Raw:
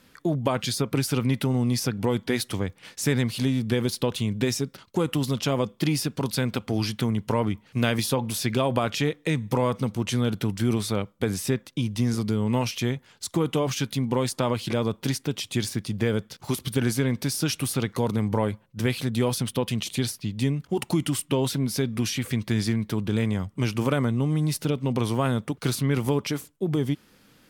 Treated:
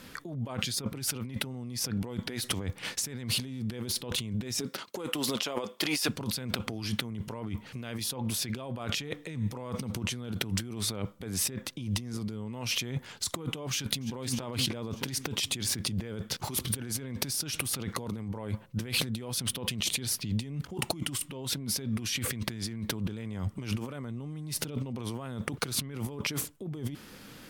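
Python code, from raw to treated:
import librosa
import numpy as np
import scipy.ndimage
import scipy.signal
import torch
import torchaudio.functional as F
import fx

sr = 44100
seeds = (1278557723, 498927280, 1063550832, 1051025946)

y = fx.highpass(x, sr, hz=fx.line((4.59, 240.0), (6.08, 590.0)), slope=12, at=(4.59, 6.08), fade=0.02)
y = fx.echo_throw(y, sr, start_s=13.7, length_s=0.45, ms=300, feedback_pct=50, wet_db=-12.0)
y = fx.over_compress(y, sr, threshold_db=-35.0, ratio=-1.0)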